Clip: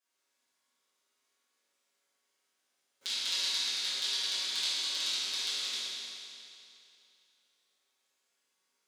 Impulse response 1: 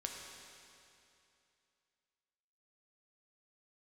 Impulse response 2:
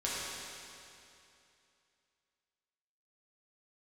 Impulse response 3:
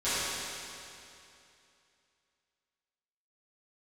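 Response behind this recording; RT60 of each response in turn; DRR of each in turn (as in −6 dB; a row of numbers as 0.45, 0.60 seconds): 3; 2.7, 2.7, 2.7 seconds; 0.0, −8.0, −17.0 decibels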